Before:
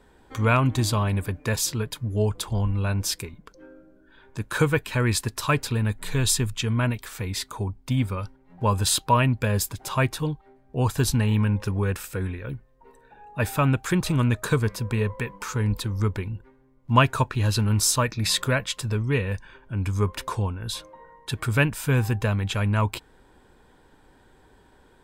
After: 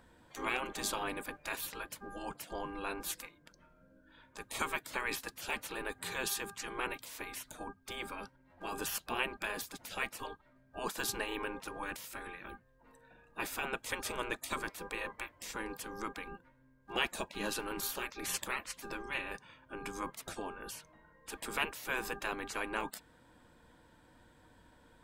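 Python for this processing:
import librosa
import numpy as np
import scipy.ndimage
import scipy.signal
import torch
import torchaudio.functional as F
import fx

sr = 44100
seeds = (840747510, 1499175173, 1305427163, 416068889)

y = fx.dmg_buzz(x, sr, base_hz=400.0, harmonics=4, level_db=-43.0, tilt_db=-3, odd_only=False)
y = fx.spec_gate(y, sr, threshold_db=-15, keep='weak')
y = F.gain(torch.from_numpy(y), -4.5).numpy()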